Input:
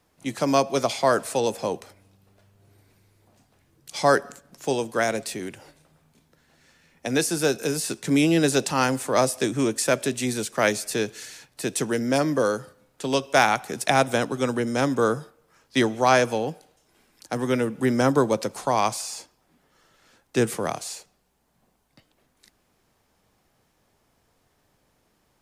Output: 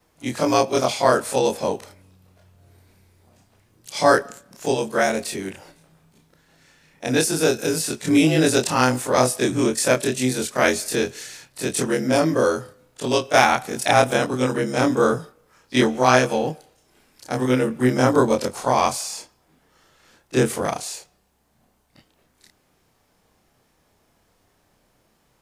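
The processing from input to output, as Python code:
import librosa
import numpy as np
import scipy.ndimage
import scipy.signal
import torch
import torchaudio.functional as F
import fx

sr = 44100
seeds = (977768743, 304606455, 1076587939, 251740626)

y = fx.frame_reverse(x, sr, frame_ms=63.0)
y = y * librosa.db_to_amplitude(6.5)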